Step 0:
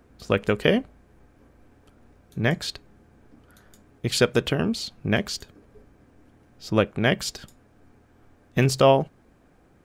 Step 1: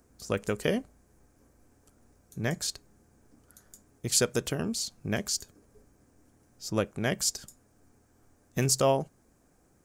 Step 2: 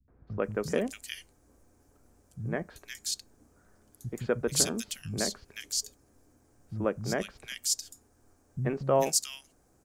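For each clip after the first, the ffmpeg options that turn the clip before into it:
ffmpeg -i in.wav -af "highshelf=frequency=4700:width_type=q:width=1.5:gain=11.5,volume=-7.5dB" out.wav
ffmpeg -i in.wav -filter_complex "[0:a]acrossover=split=180|2100[link_01][link_02][link_03];[link_02]adelay=80[link_04];[link_03]adelay=440[link_05];[link_01][link_04][link_05]amix=inputs=3:normalize=0" out.wav

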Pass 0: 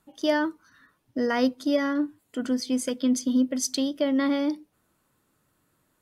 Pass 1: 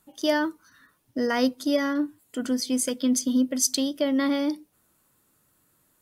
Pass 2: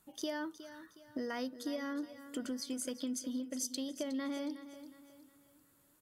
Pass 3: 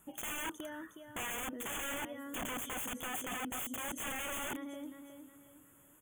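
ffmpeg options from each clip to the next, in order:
ffmpeg -i in.wav -af "highshelf=frequency=6400:gain=11" out.wav
ffmpeg -i in.wav -af "acompressor=threshold=-33dB:ratio=5,aecho=1:1:364|728|1092|1456:0.224|0.0873|0.0341|0.0133,volume=-4dB" out.wav
ffmpeg -i in.wav -af "aeval=exprs='(mod(106*val(0)+1,2)-1)/106':channel_layout=same,asuperstop=centerf=4700:order=20:qfactor=1.7,volume=6.5dB" out.wav

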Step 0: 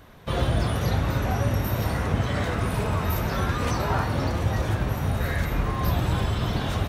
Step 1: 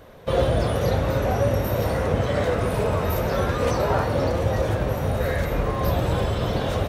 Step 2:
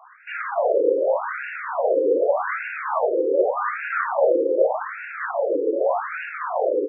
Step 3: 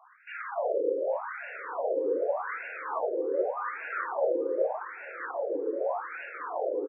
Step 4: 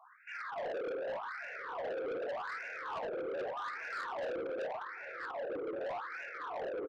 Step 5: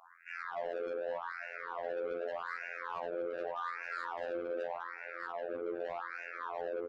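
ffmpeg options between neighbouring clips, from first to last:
ffmpeg -i in.wav -af "equalizer=frequency=520:width_type=o:width=0.71:gain=11.5" out.wav
ffmpeg -i in.wav -af "afftfilt=real='re*between(b*sr/1024,370*pow(2000/370,0.5+0.5*sin(2*PI*0.84*pts/sr))/1.41,370*pow(2000/370,0.5+0.5*sin(2*PI*0.84*pts/sr))*1.41)':imag='im*between(b*sr/1024,370*pow(2000/370,0.5+0.5*sin(2*PI*0.84*pts/sr))/1.41,370*pow(2000/370,0.5+0.5*sin(2*PI*0.84*pts/sr))*1.41)':win_size=1024:overlap=0.75,volume=8.5dB" out.wav
ffmpeg -i in.wav -filter_complex "[0:a]asplit=2[link_01][link_02];[link_02]adelay=846,lowpass=frequency=1400:poles=1,volume=-20.5dB,asplit=2[link_03][link_04];[link_04]adelay=846,lowpass=frequency=1400:poles=1,volume=0.33,asplit=2[link_05][link_06];[link_06]adelay=846,lowpass=frequency=1400:poles=1,volume=0.33[link_07];[link_01][link_03][link_05][link_07]amix=inputs=4:normalize=0,volume=-9dB" out.wav
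ffmpeg -i in.wav -af "asoftclip=type=tanh:threshold=-33dB,volume=-2.5dB" out.wav
ffmpeg -i in.wav -af "afftfilt=real='hypot(re,im)*cos(PI*b)':imag='0':win_size=2048:overlap=0.75,asoftclip=type=tanh:threshold=-28dB,volume=4dB" out.wav

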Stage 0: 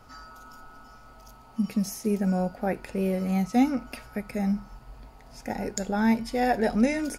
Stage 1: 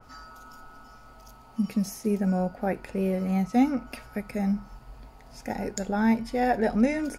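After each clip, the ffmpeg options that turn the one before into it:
ffmpeg -i in.wav -af "adynamicequalizer=threshold=0.00447:dfrequency=2700:dqfactor=0.7:tfrequency=2700:tqfactor=0.7:attack=5:release=100:ratio=0.375:range=3:mode=cutabove:tftype=highshelf" out.wav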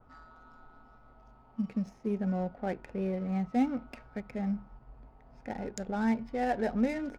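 ffmpeg -i in.wav -af "adynamicsmooth=sensitivity=7.5:basefreq=1300,volume=-6dB" out.wav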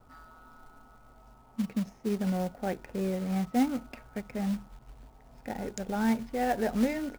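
ffmpeg -i in.wav -af "acrusher=bits=4:mode=log:mix=0:aa=0.000001,volume=1.5dB" out.wav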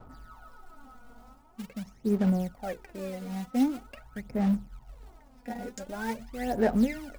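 ffmpeg -i in.wav -af "aphaser=in_gain=1:out_gain=1:delay=4.2:decay=0.7:speed=0.45:type=sinusoidal,areverse,acompressor=mode=upward:threshold=-37dB:ratio=2.5,areverse,volume=-5dB" out.wav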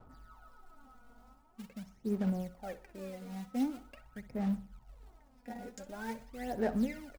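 ffmpeg -i in.wav -af "aecho=1:1:62|124|186|248:0.158|0.065|0.0266|0.0109,volume=-7.5dB" out.wav

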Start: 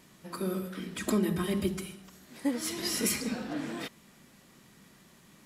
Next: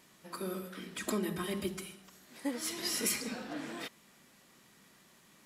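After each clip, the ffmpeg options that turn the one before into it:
ffmpeg -i in.wav -af "lowshelf=frequency=260:gain=-9.5,volume=-2dB" out.wav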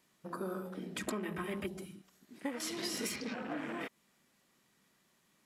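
ffmpeg -i in.wav -filter_complex "[0:a]afwtdn=0.00501,acrossover=split=630|6900[link_01][link_02][link_03];[link_01]acompressor=threshold=-46dB:ratio=4[link_04];[link_02]acompressor=threshold=-48dB:ratio=4[link_05];[link_03]acompressor=threshold=-55dB:ratio=4[link_06];[link_04][link_05][link_06]amix=inputs=3:normalize=0,volume=6.5dB" out.wav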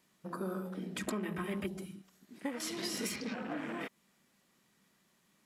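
ffmpeg -i in.wav -af "equalizer=frequency=190:width=3.6:gain=4" out.wav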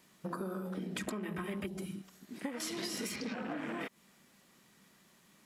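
ffmpeg -i in.wav -af "acompressor=threshold=-43dB:ratio=6,volume=7dB" out.wav

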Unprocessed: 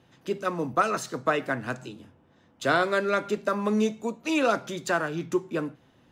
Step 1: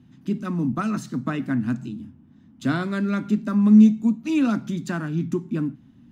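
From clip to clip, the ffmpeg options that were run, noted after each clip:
ffmpeg -i in.wav -af "lowshelf=frequency=340:width_type=q:width=3:gain=12,volume=-5dB" out.wav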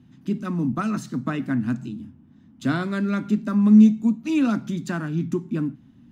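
ffmpeg -i in.wav -af anull out.wav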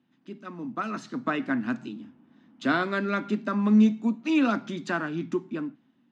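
ffmpeg -i in.wav -af "highpass=370,lowpass=4200,dynaudnorm=framelen=210:gausssize=9:maxgain=12dB,volume=-7.5dB" out.wav

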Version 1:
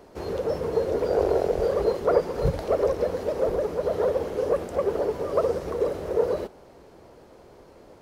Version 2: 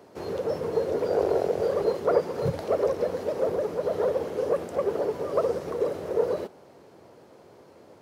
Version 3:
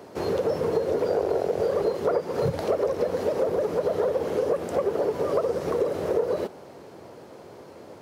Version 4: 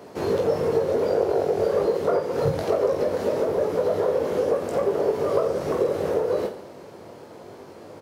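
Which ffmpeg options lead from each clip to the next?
ffmpeg -i in.wav -af "highpass=frequency=94:width=0.5412,highpass=frequency=94:width=1.3066,volume=-1.5dB" out.wav
ffmpeg -i in.wav -af "acompressor=threshold=-28dB:ratio=6,volume=7dB" out.wav
ffmpeg -i in.wav -af "aecho=1:1:20|48|87.2|142.1|218.9:0.631|0.398|0.251|0.158|0.1" out.wav

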